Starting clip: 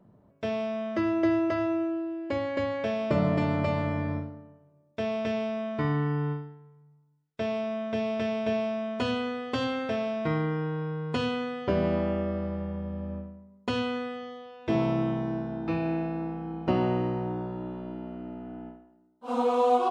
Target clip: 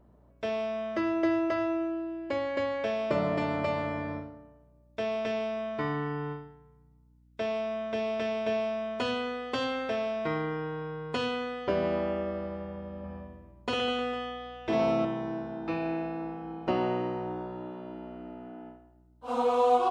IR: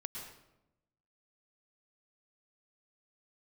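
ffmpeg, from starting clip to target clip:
-filter_complex "[0:a]bass=frequency=250:gain=-10,treble=frequency=4000:gain=0,aeval=exprs='val(0)+0.001*(sin(2*PI*60*n/s)+sin(2*PI*2*60*n/s)/2+sin(2*PI*3*60*n/s)/3+sin(2*PI*4*60*n/s)/4+sin(2*PI*5*60*n/s)/5)':channel_layout=same,asettb=1/sr,asplit=3[link_01][link_02][link_03];[link_01]atrim=end=12.994[link_04];[link_02]atrim=start=12.99:end=15.05,asetpts=PTS-STARTPTS,afade=type=in:duration=0.004:curve=qsin,afade=type=out:start_time=2.056:duration=0.004:curve=qsin,aecho=1:1:50|115|199.5|309.4|452.2:0.631|0.398|0.251|0.158|0.1,atrim=end_sample=90846[link_05];[link_03]atrim=start=15.046[link_06];[link_04][link_05]acrossfade=duration=0.004:curve1=hsin:curve2=qsin[link_07];[link_07][link_06]acrossfade=duration=0.004:curve1=qsin:curve2=hsin"

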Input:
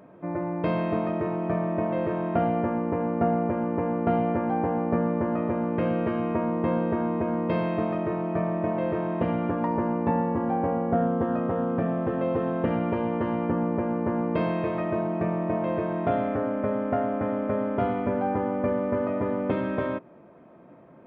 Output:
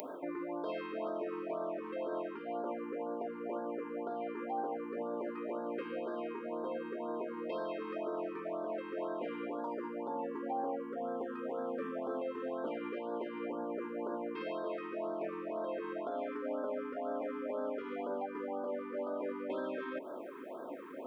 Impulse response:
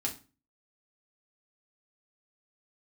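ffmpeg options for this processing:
-filter_complex "[0:a]highpass=frequency=310:width=0.5412,highpass=frequency=310:width=1.3066,areverse,acompressor=threshold=-37dB:ratio=20,areverse,alimiter=level_in=14.5dB:limit=-24dB:level=0:latency=1:release=100,volume=-14.5dB,acompressor=mode=upward:threshold=-57dB:ratio=2.5,crystalizer=i=3:c=0,asplit=2[link_01][link_02];[1:a]atrim=start_sample=2205,lowpass=2200[link_03];[link_02][link_03]afir=irnorm=-1:irlink=0,volume=-9dB[link_04];[link_01][link_04]amix=inputs=2:normalize=0,afftfilt=real='re*(1-between(b*sr/1024,630*pow(2400/630,0.5+0.5*sin(2*PI*2*pts/sr))/1.41,630*pow(2400/630,0.5+0.5*sin(2*PI*2*pts/sr))*1.41))':imag='im*(1-between(b*sr/1024,630*pow(2400/630,0.5+0.5*sin(2*PI*2*pts/sr))/1.41,630*pow(2400/630,0.5+0.5*sin(2*PI*2*pts/sr))*1.41))':win_size=1024:overlap=0.75,volume=6.5dB"

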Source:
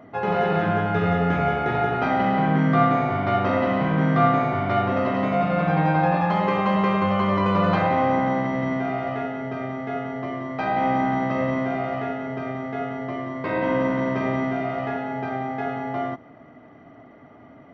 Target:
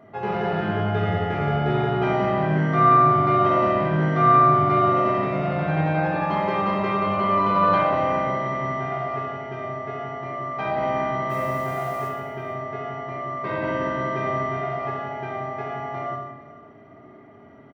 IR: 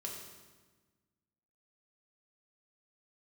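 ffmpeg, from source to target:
-filter_complex "[0:a]asplit=3[link_01][link_02][link_03];[link_01]afade=type=out:start_time=11.29:duration=0.02[link_04];[link_02]acrusher=bits=8:dc=4:mix=0:aa=0.000001,afade=type=in:start_time=11.29:duration=0.02,afade=type=out:start_time=12.07:duration=0.02[link_05];[link_03]afade=type=in:start_time=12.07:duration=0.02[link_06];[link_04][link_05][link_06]amix=inputs=3:normalize=0,aecho=1:1:452:0.106[link_07];[1:a]atrim=start_sample=2205,afade=type=out:start_time=0.34:duration=0.01,atrim=end_sample=15435[link_08];[link_07][link_08]afir=irnorm=-1:irlink=0"

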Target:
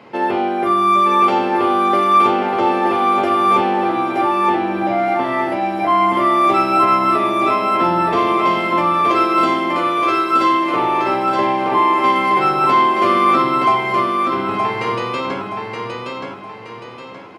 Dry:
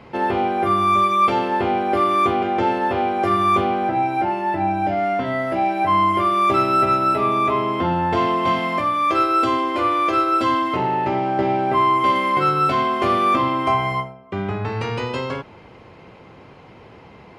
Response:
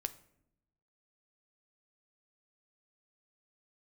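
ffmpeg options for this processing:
-filter_complex "[0:a]highpass=210,aecho=1:1:922|1844|2766|3688|4610:0.631|0.252|0.101|0.0404|0.0162[link_01];[1:a]atrim=start_sample=2205[link_02];[link_01][link_02]afir=irnorm=-1:irlink=0,volume=3dB"

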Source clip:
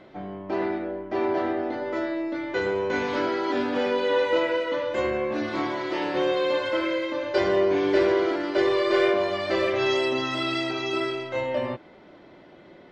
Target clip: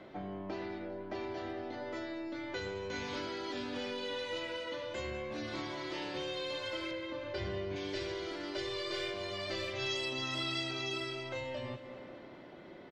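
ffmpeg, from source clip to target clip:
ffmpeg -i in.wav -filter_complex "[0:a]asettb=1/sr,asplit=3[link_01][link_02][link_03];[link_01]atrim=end=6.914[link_04];[link_02]atrim=start=6.91:end=7.76,asetpts=PTS-STARTPTS,afade=type=in:duration=0.004:curve=qsin,afade=type=out:start_time=0.846:duration=0.004:curve=qsin,bass=frequency=250:gain=5,treble=frequency=4000:gain=-13[link_05];[link_03]atrim=start=7.756[link_06];[link_04][link_05]acrossfade=duration=0.004:curve1=hsin:curve2=qsin[link_07];[link_07][link_06]acrossfade=duration=0.004:curve1=qsin:curve2=hsin,aecho=1:1:199|398|597|796|995:0.141|0.0791|0.0443|0.0248|0.0139,acrossover=split=130|3000[link_08][link_09][link_10];[link_09]acompressor=threshold=-37dB:ratio=6[link_11];[link_08][link_11][link_10]amix=inputs=3:normalize=0,volume=-2.5dB" out.wav

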